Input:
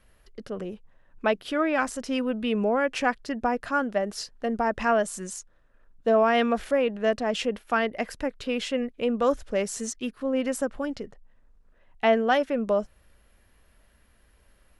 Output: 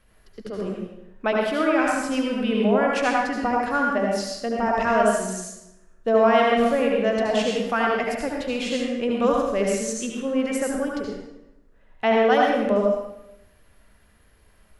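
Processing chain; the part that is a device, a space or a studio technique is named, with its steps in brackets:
bathroom (convolution reverb RT60 0.90 s, pre-delay 67 ms, DRR −2 dB)

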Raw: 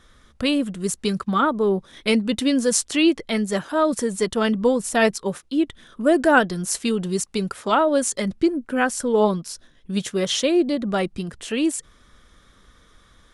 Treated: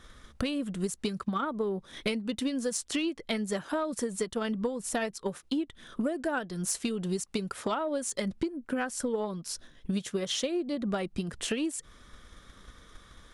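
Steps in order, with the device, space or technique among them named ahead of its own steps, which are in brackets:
drum-bus smash (transient designer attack +6 dB, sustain 0 dB; downward compressor 12 to 1, threshold −27 dBFS, peak gain reduction 19.5 dB; soft clipping −18 dBFS, distortion −24 dB)

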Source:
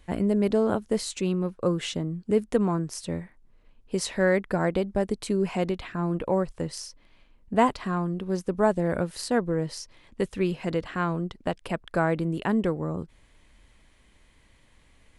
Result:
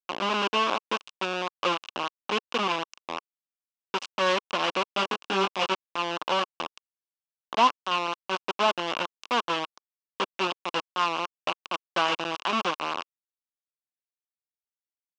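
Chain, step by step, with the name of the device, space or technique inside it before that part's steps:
hand-held game console (bit reduction 4 bits; loudspeaker in its box 410–5,200 Hz, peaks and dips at 450 Hz −7 dB, 680 Hz −3 dB, 1,100 Hz +8 dB, 1,900 Hz −8 dB, 2,800 Hz +9 dB, 4,400 Hz −4 dB)
0:04.86–0:05.75: double-tracking delay 21 ms −2.5 dB

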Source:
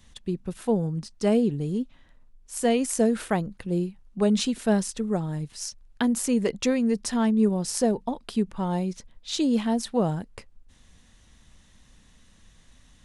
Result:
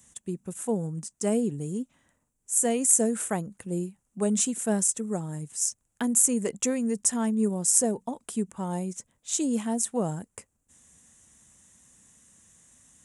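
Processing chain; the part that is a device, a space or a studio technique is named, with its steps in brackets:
budget condenser microphone (high-pass filter 100 Hz 12 dB per octave; high shelf with overshoot 5,800 Hz +10 dB, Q 3)
level −4 dB

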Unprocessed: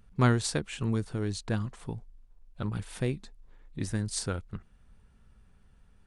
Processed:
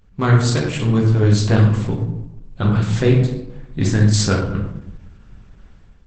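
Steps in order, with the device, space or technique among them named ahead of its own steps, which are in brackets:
speakerphone in a meeting room (convolution reverb RT60 0.85 s, pre-delay 8 ms, DRR −2 dB; automatic gain control gain up to 9 dB; level +3.5 dB; Opus 12 kbit/s 48,000 Hz)

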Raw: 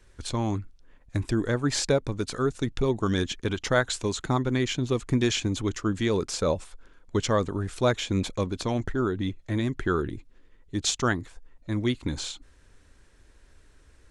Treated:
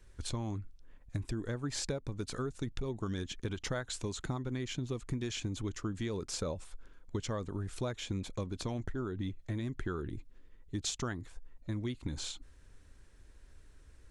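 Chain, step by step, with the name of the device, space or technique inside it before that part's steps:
ASMR close-microphone chain (low-shelf EQ 190 Hz +6 dB; downward compressor, threshold −27 dBFS, peak gain reduction 11 dB; high-shelf EQ 9,400 Hz +4.5 dB)
level −6 dB

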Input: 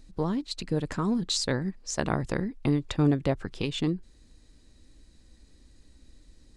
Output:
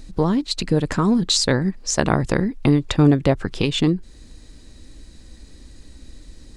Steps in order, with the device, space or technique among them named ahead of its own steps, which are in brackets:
parallel compression (in parallel at −1.5 dB: downward compressor, threshold −36 dBFS, peak gain reduction 17 dB)
on the sum: level +7.5 dB

